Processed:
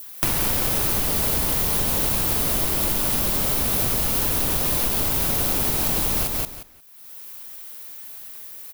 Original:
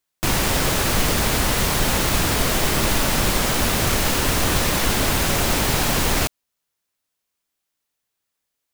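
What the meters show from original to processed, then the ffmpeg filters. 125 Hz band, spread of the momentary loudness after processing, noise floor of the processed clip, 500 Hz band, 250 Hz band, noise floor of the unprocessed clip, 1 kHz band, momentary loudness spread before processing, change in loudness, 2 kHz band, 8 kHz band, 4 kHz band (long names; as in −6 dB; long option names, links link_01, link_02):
−5.5 dB, 16 LU, −42 dBFS, −6.0 dB, −5.5 dB, −80 dBFS, −7.0 dB, 0 LU, −0.5 dB, −9.0 dB, −2.5 dB, −6.5 dB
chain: -filter_complex "[0:a]acompressor=mode=upward:threshold=-24dB:ratio=2.5,asplit=2[link_01][link_02];[link_02]aecho=0:1:178|356|534:0.501|0.0902|0.0162[link_03];[link_01][link_03]amix=inputs=2:normalize=0,acompressor=threshold=-22dB:ratio=6,adynamicequalizer=threshold=0.00562:dfrequency=1800:dqfactor=1.3:tfrequency=1800:tqfactor=1.3:attack=5:release=100:ratio=0.375:range=2.5:mode=cutabove:tftype=bell,aexciter=amount=3.6:drive=2.8:freq=10000"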